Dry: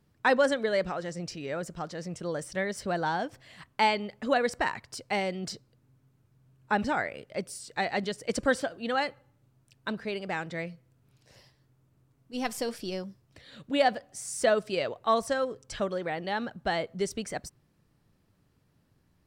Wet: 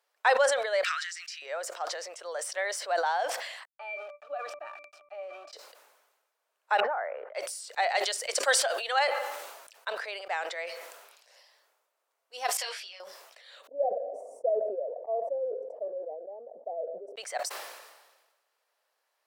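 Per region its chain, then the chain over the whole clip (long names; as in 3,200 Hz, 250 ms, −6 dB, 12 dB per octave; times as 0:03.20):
0:00.83–0:01.42: inverse Chebyshev band-stop filter 160–850 Hz + high-shelf EQ 9,200 Hz −6.5 dB
0:03.65–0:05.53: centre clipping without the shift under −38 dBFS + resonances in every octave D, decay 0.11 s
0:06.80–0:07.35: low-pass filter 1,500 Hz 24 dB per octave + downward compressor 2 to 1, threshold −32 dBFS
0:07.95–0:08.99: high-shelf EQ 2,500 Hz +8 dB + mains-hum notches 50/100/150/200/250/300/350/400 Hz
0:12.57–0:13.00: resonant band-pass 2,600 Hz, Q 1.1 + micro pitch shift up and down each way 13 cents
0:13.67–0:17.17: elliptic low-pass filter 590 Hz, stop band 60 dB + comb filter 4.3 ms, depth 34%
whole clip: Butterworth high-pass 540 Hz 36 dB per octave; dynamic equaliser 720 Hz, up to +4 dB, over −42 dBFS, Q 3.9; level that may fall only so fast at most 45 dB per second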